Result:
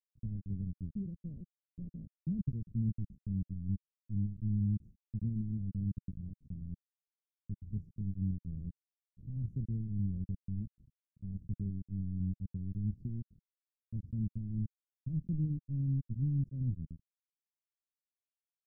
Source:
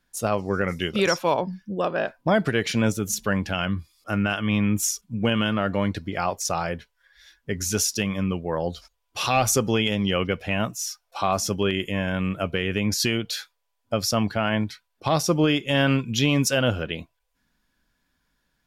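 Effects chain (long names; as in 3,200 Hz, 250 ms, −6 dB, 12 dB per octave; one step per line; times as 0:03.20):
bit reduction 4 bits
inverse Chebyshev low-pass filter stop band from 810 Hz, stop band 70 dB
level −5.5 dB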